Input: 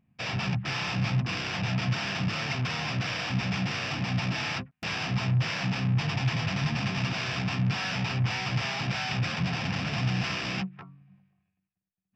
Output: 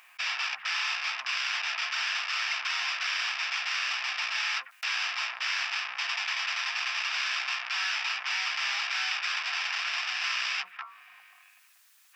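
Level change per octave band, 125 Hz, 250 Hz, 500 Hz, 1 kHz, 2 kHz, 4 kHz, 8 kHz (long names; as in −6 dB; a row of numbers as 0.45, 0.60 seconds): below −40 dB, below −40 dB, −15.5 dB, −1.0 dB, +4.0 dB, +3.5 dB, can't be measured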